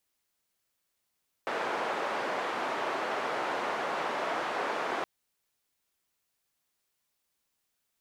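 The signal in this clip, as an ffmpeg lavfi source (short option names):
-f lavfi -i "anoisesrc=c=white:d=3.57:r=44100:seed=1,highpass=f=420,lowpass=f=1100,volume=-13.1dB"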